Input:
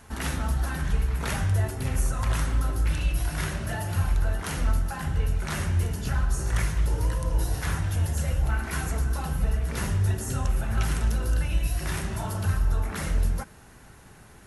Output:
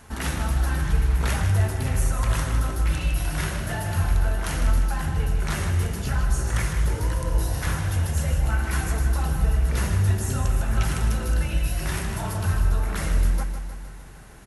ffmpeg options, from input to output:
ffmpeg -i in.wav -af "aecho=1:1:155|310|465|620|775|930|1085|1240:0.376|0.226|0.135|0.0812|0.0487|0.0292|0.0175|0.0105,volume=2dB" out.wav

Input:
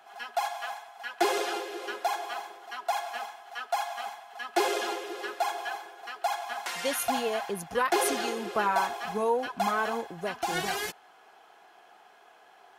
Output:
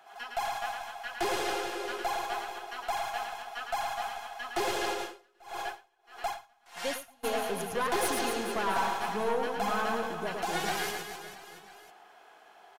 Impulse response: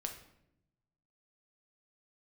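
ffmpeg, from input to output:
-filter_complex "[0:a]aeval=exprs='(tanh(15.8*val(0)+0.3)-tanh(0.3))/15.8':channel_layout=same,aecho=1:1:110|253|438.9|680.6|994.7:0.631|0.398|0.251|0.158|0.1,asplit=3[link_01][link_02][link_03];[link_01]afade=type=out:start_time=4.93:duration=0.02[link_04];[link_02]aeval=exprs='val(0)*pow(10,-33*(0.5-0.5*cos(2*PI*1.6*n/s))/20)':channel_layout=same,afade=type=in:start_time=4.93:duration=0.02,afade=type=out:start_time=7.23:duration=0.02[link_05];[link_03]afade=type=in:start_time=7.23:duration=0.02[link_06];[link_04][link_05][link_06]amix=inputs=3:normalize=0,volume=-1dB"

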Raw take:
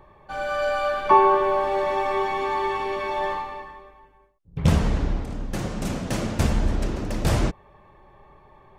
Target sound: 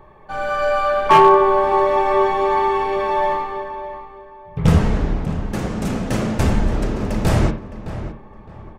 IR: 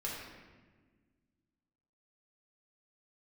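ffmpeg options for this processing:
-filter_complex "[0:a]asplit=2[link_01][link_02];[link_02]adelay=613,lowpass=frequency=2500:poles=1,volume=-12dB,asplit=2[link_03][link_04];[link_04]adelay=613,lowpass=frequency=2500:poles=1,volume=0.29,asplit=2[link_05][link_06];[link_06]adelay=613,lowpass=frequency=2500:poles=1,volume=0.29[link_07];[link_01][link_03][link_05][link_07]amix=inputs=4:normalize=0,aeval=exprs='0.316*(abs(mod(val(0)/0.316+3,4)-2)-1)':channel_layout=same,asplit=2[link_08][link_09];[1:a]atrim=start_sample=2205,atrim=end_sample=4410,lowpass=2700[link_10];[link_09][link_10]afir=irnorm=-1:irlink=0,volume=-2.5dB[link_11];[link_08][link_11]amix=inputs=2:normalize=0,volume=1.5dB"

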